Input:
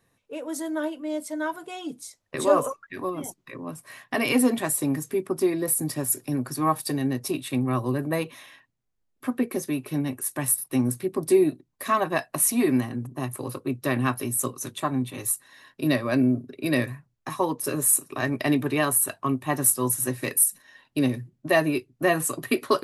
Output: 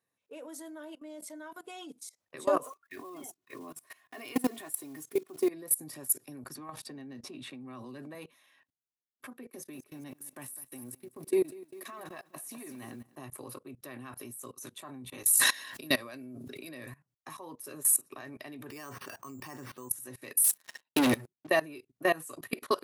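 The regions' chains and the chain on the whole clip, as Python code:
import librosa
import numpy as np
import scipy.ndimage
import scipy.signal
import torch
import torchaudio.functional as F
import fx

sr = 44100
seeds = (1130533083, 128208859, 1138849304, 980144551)

y = fx.chain(x, sr, fx.block_float(bits=5),
    fx.comb(ms=2.8, depth=0.49), at=(2.63, 5.5))
y = fx.chain(y, sr, fx.lowpass(hz=5600.0, slope=12),
    fx.peak_eq(hz=230.0, db=9.5, octaves=0.26),
    fx.band_squash(depth_pct=100), at=(6.55, 8.15))
y = fx.chain(y, sr, fx.level_steps(step_db=18),
    fx.echo_crushed(ms=202, feedback_pct=35, bits=9, wet_db=-10), at=(9.5, 13.16))
y = fx.chain(y, sr, fx.high_shelf(hz=2200.0, db=8.5),
    fx.sustainer(db_per_s=35.0), at=(15.23, 16.69))
y = fx.chain(y, sr, fx.peak_eq(hz=630.0, db=-5.5, octaves=0.3),
    fx.resample_bad(factor=6, down='filtered', up='hold'),
    fx.env_flatten(amount_pct=50), at=(18.7, 19.89))
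y = fx.chain(y, sr, fx.low_shelf(hz=190.0, db=-8.0),
    fx.leveller(passes=5), at=(20.44, 21.47))
y = fx.highpass(y, sr, hz=280.0, slope=6)
y = fx.high_shelf(y, sr, hz=11000.0, db=4.5)
y = fx.level_steps(y, sr, step_db=21)
y = y * librosa.db_to_amplitude(-2.5)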